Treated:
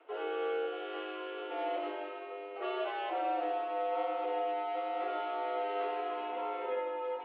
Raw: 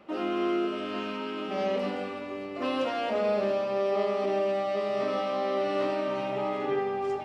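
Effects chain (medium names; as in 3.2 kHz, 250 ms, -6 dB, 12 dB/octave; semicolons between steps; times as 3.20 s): mistuned SSB +110 Hz 190–3300 Hz; trim -6.5 dB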